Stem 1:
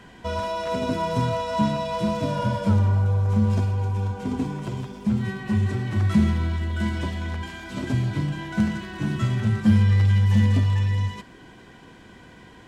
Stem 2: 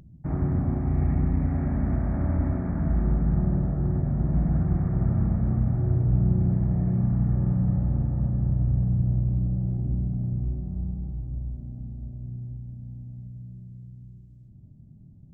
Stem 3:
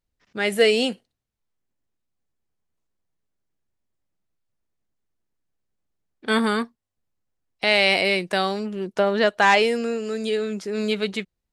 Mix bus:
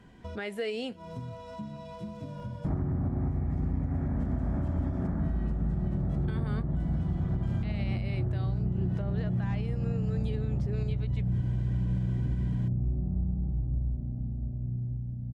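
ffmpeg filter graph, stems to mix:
ffmpeg -i stem1.wav -i stem2.wav -i stem3.wav -filter_complex "[0:a]acompressor=threshold=-30dB:ratio=6,lowshelf=frequency=380:gain=10.5,volume=-4.5dB,afade=type=in:start_time=8.38:duration=0.61:silence=0.354813[link_01];[1:a]adelay=2400,volume=2.5dB[link_02];[2:a]alimiter=limit=-18.5dB:level=0:latency=1:release=431,volume=-4.5dB,asplit=2[link_03][link_04];[link_04]apad=whole_len=559141[link_05];[link_01][link_05]sidechaincompress=threshold=-52dB:ratio=6:attack=22:release=121[link_06];[link_02][link_03]amix=inputs=2:normalize=0,highshelf=frequency=4300:gain=-11,acompressor=threshold=-22dB:ratio=6,volume=0dB[link_07];[link_06][link_07]amix=inputs=2:normalize=0,alimiter=limit=-21.5dB:level=0:latency=1:release=240" out.wav

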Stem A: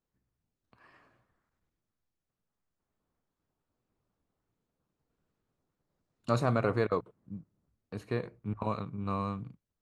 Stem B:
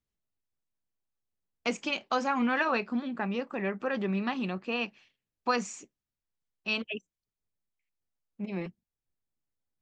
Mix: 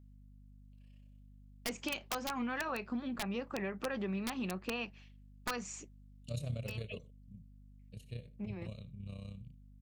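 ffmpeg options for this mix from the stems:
ffmpeg -i stem1.wav -i stem2.wav -filter_complex "[0:a]firequalizer=gain_entry='entry(140,0);entry(320,-20);entry(570,-7);entry(820,-28);entry(1400,-27);entry(2900,5);entry(4500,-4);entry(8300,4)':delay=0.05:min_phase=1,tremolo=f=32:d=0.667,volume=-3.5dB,asplit=3[link_01][link_02][link_03];[link_02]volume=-20dB[link_04];[1:a]acompressor=threshold=-32dB:ratio=10,aeval=exprs='(mod(17.8*val(0)+1,2)-1)/17.8':channel_layout=same,volume=-1.5dB[link_05];[link_03]apad=whole_len=432934[link_06];[link_05][link_06]sidechaincompress=threshold=-46dB:ratio=5:attack=9.6:release=558[link_07];[link_04]aecho=0:1:78:1[link_08];[link_01][link_07][link_08]amix=inputs=3:normalize=0,aeval=exprs='val(0)+0.00158*(sin(2*PI*50*n/s)+sin(2*PI*2*50*n/s)/2+sin(2*PI*3*50*n/s)/3+sin(2*PI*4*50*n/s)/4+sin(2*PI*5*50*n/s)/5)':channel_layout=same" out.wav

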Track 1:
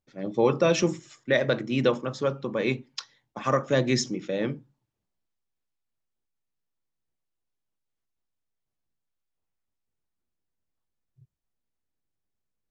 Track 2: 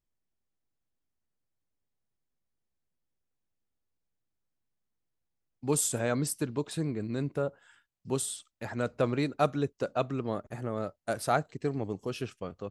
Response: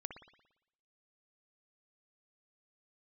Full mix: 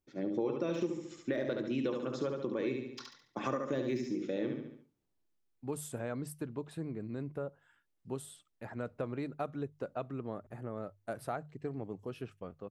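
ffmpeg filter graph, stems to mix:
-filter_complex "[0:a]deesser=0.9,equalizer=frequency=330:width=2.1:gain=10,volume=-3.5dB,asplit=2[link_01][link_02];[link_02]volume=-5dB[link_03];[1:a]equalizer=frequency=6100:width=0.63:gain=-12.5,bandreject=frequency=50:width_type=h:width=6,bandreject=frequency=100:width_type=h:width=6,bandreject=frequency=150:width_type=h:width=6,volume=-6dB[link_04];[link_03]aecho=0:1:71|142|213|284|355:1|0.38|0.144|0.0549|0.0209[link_05];[link_01][link_04][link_05]amix=inputs=3:normalize=0,acompressor=threshold=-33dB:ratio=4"

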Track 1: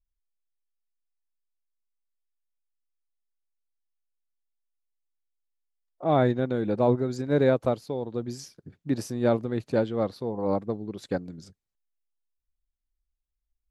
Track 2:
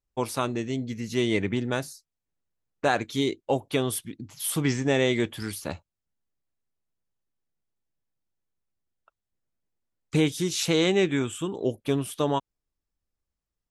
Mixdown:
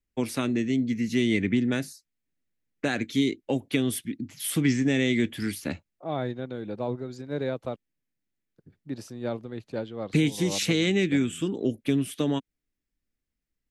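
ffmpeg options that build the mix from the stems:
ffmpeg -i stem1.wav -i stem2.wav -filter_complex "[0:a]adynamicequalizer=threshold=0.00447:dfrequency=3100:dqfactor=1.1:tfrequency=3100:tqfactor=1.1:attack=5:release=100:ratio=0.375:range=3:mode=boostabove:tftype=bell,volume=-8dB,asplit=3[link_01][link_02][link_03];[link_01]atrim=end=7.76,asetpts=PTS-STARTPTS,afade=type=out:start_time=7.756:duration=0.004:curve=hsin[link_04];[link_02]atrim=start=7.76:end=8.56,asetpts=PTS-STARTPTS,volume=0[link_05];[link_03]atrim=start=8.56,asetpts=PTS-STARTPTS,afade=type=in:duration=0.004:curve=hsin[link_06];[link_04][link_05][link_06]concat=n=3:v=0:a=1[link_07];[1:a]equalizer=frequency=250:width_type=o:width=1:gain=10,equalizer=frequency=1000:width_type=o:width=1:gain=-8,equalizer=frequency=2000:width_type=o:width=1:gain=9,volume=-2dB[link_08];[link_07][link_08]amix=inputs=2:normalize=0,acrossover=split=230|3000[link_09][link_10][link_11];[link_10]acompressor=threshold=-25dB:ratio=6[link_12];[link_09][link_12][link_11]amix=inputs=3:normalize=0" out.wav

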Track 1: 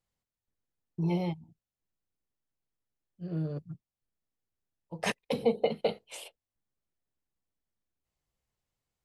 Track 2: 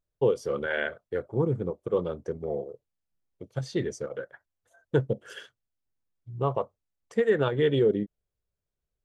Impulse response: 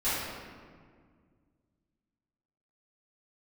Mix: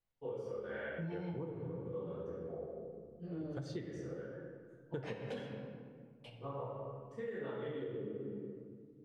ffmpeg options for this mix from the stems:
-filter_complex "[0:a]lowpass=3700,alimiter=limit=-23.5dB:level=0:latency=1:release=299,flanger=delay=19.5:depth=6.8:speed=0.94,volume=-3dB,asplit=3[link_01][link_02][link_03];[link_01]atrim=end=5.4,asetpts=PTS-STARTPTS,afade=type=out:start_time=5.396:duration=0.004:curve=hsin[link_04];[link_02]atrim=start=5.4:end=6.24,asetpts=PTS-STARTPTS,volume=0[link_05];[link_03]atrim=start=6.24,asetpts=PTS-STARTPTS,afade=type=in:duration=0.004:curve=hsin[link_06];[link_04][link_05][link_06]concat=n=3:v=0:a=1,asplit=3[link_07][link_08][link_09];[link_08]volume=-11.5dB[link_10];[1:a]highshelf=frequency=6000:gain=-5.5,volume=-8.5dB,asplit=2[link_11][link_12];[link_12]volume=-14dB[link_13];[link_09]apad=whole_len=399040[link_14];[link_11][link_14]sidechaingate=range=-33dB:threshold=-55dB:ratio=16:detection=peak[link_15];[2:a]atrim=start_sample=2205[link_16];[link_10][link_13]amix=inputs=2:normalize=0[link_17];[link_17][link_16]afir=irnorm=-1:irlink=0[link_18];[link_07][link_15][link_18]amix=inputs=3:normalize=0,acompressor=threshold=-38dB:ratio=10"

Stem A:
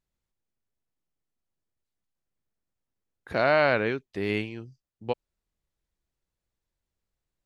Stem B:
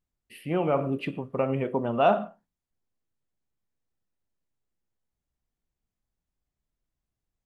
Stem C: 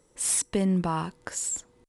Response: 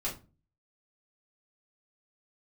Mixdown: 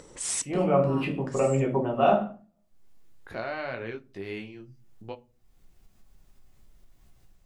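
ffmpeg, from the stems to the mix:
-filter_complex "[0:a]volume=-6dB,asplit=2[link_01][link_02];[link_02]volume=-17dB[link_03];[1:a]dynaudnorm=framelen=380:gausssize=3:maxgain=12.5dB,volume=-9dB,asplit=3[link_04][link_05][link_06];[link_05]volume=-4.5dB[link_07];[2:a]lowpass=frequency=8300:width=0.5412,lowpass=frequency=8300:width=1.3066,volume=-1.5dB,asplit=2[link_08][link_09];[link_09]volume=-15.5dB[link_10];[link_06]apad=whole_len=83077[link_11];[link_08][link_11]sidechaincompress=threshold=-36dB:ratio=8:attack=16:release=824[link_12];[link_01][link_04]amix=inputs=2:normalize=0,flanger=delay=16.5:depth=6.9:speed=0.54,acompressor=threshold=-31dB:ratio=6,volume=0dB[link_13];[3:a]atrim=start_sample=2205[link_14];[link_03][link_07][link_10]amix=inputs=3:normalize=0[link_15];[link_15][link_14]afir=irnorm=-1:irlink=0[link_16];[link_12][link_13][link_16]amix=inputs=3:normalize=0,acompressor=mode=upward:threshold=-39dB:ratio=2.5"

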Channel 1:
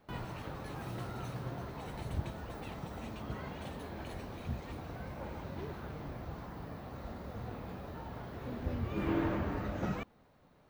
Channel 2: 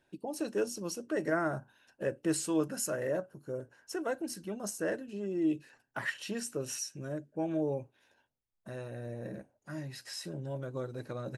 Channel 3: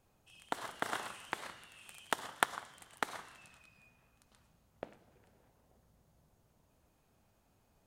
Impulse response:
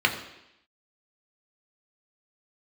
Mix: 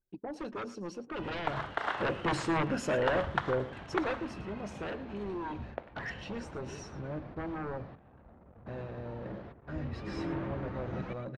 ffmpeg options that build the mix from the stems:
-filter_complex "[0:a]asoftclip=type=tanh:threshold=-26dB,adelay=1100,volume=-3.5dB,asplit=2[link_01][link_02];[link_02]volume=-8.5dB[link_03];[1:a]aemphasis=mode=reproduction:type=cd,aeval=exprs='0.126*sin(PI/2*4.47*val(0)/0.126)':channel_layout=same,volume=-7.5dB,afade=type=in:start_time=1.84:duration=0.29:silence=0.375837,afade=type=out:start_time=3.81:duration=0.49:silence=0.354813,asplit=3[link_04][link_05][link_06];[link_05]volume=-17dB[link_07];[2:a]asplit=2[link_08][link_09];[link_09]highpass=frequency=720:poles=1,volume=21dB,asoftclip=type=tanh:threshold=-4dB[link_10];[link_08][link_10]amix=inputs=2:normalize=0,lowpass=frequency=1700:poles=1,volume=-6dB,adelay=950,volume=-5.5dB[link_11];[link_06]apad=whole_len=520271[link_12];[link_01][link_12]sidechaingate=range=-33dB:threshold=-56dB:ratio=16:detection=peak[link_13];[link_03][link_07]amix=inputs=2:normalize=0,aecho=0:1:112:1[link_14];[link_13][link_04][link_11][link_14]amix=inputs=4:normalize=0,anlmdn=0.000158,lowpass=3900"

